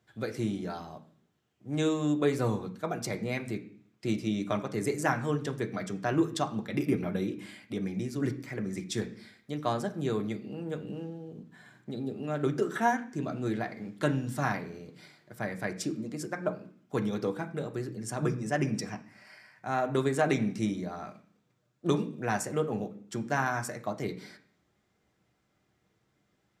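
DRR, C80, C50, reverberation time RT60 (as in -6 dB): 3.0 dB, 17.0 dB, 14.0 dB, 0.55 s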